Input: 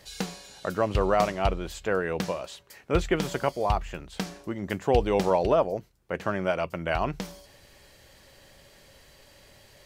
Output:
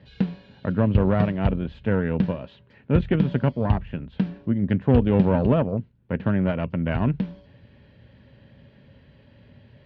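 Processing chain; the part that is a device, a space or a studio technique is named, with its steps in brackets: guitar amplifier (tube stage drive 17 dB, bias 0.7; tone controls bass +12 dB, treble -14 dB; speaker cabinet 93–3700 Hz, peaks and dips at 120 Hz +3 dB, 240 Hz +8 dB, 340 Hz -4 dB, 740 Hz -7 dB, 1200 Hz -8 dB, 2100 Hz -5 dB); gain +4 dB

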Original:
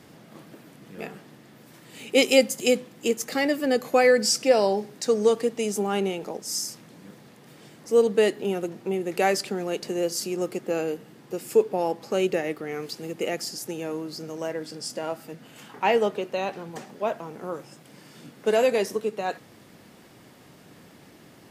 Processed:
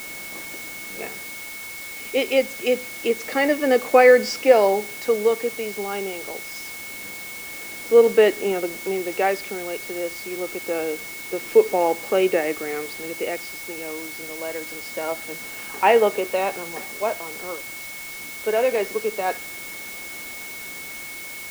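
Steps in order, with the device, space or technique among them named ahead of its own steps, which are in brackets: shortwave radio (BPF 310–2800 Hz; tremolo 0.25 Hz, depth 59%; whine 2200 Hz -42 dBFS; white noise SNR 15 dB); gain +6.5 dB

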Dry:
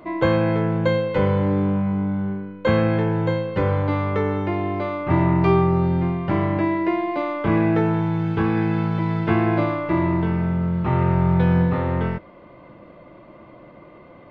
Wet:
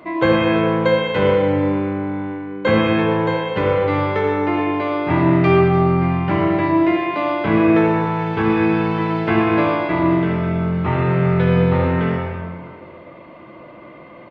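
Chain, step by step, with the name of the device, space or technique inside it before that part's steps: PA in a hall (HPF 120 Hz 6 dB/oct; bell 2300 Hz +4.5 dB 1.4 oct; echo 0.125 s -11 dB; reverb RT60 1.8 s, pre-delay 58 ms, DRR 0.5 dB); gain +1.5 dB

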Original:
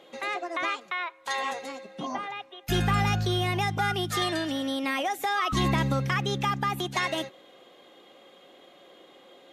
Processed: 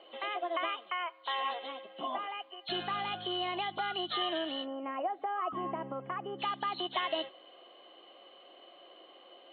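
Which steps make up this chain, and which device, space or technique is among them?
4.64–6.39 LPF 1100 Hz 12 dB/oct; hearing aid with frequency lowering (nonlinear frequency compression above 2900 Hz 4:1; compressor 2:1, threshold -29 dBFS, peak gain reduction 5 dB; speaker cabinet 310–5200 Hz, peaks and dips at 340 Hz +5 dB, 670 Hz +9 dB, 1100 Hz +7 dB, 3000 Hz +6 dB, 4600 Hz +5 dB); gain -7 dB

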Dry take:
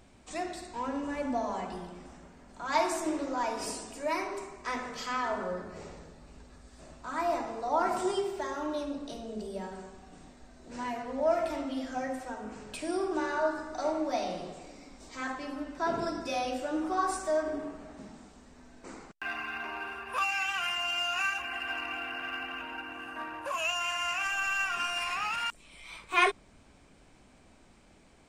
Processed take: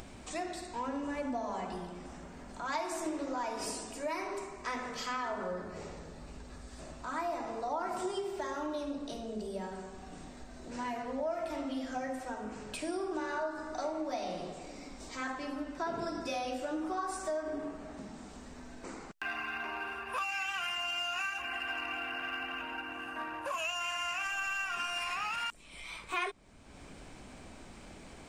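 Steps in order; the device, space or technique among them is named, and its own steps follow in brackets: upward and downward compression (upward compressor, threshold -40 dBFS; compressor 4:1, threshold -33 dBFS, peak gain reduction 12 dB)

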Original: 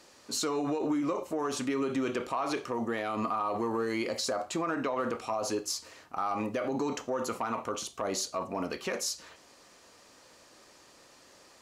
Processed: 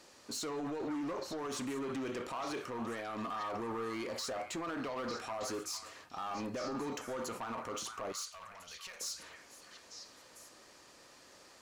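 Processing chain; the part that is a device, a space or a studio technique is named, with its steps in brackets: limiter into clipper (limiter -28 dBFS, peak gain reduction 6 dB; hard clip -33 dBFS, distortion -14 dB); 8.12–9.01 passive tone stack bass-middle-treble 10-0-10; delay with a stepping band-pass 0.451 s, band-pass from 1600 Hz, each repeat 1.4 oct, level -3.5 dB; gain -2 dB

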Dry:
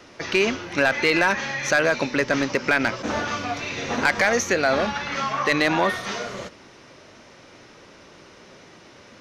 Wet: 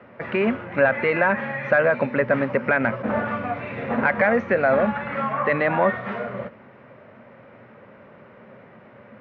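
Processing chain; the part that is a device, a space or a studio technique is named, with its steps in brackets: bass cabinet (speaker cabinet 88–2100 Hz, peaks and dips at 120 Hz +7 dB, 220 Hz +8 dB, 320 Hz -8 dB, 560 Hz +6 dB)

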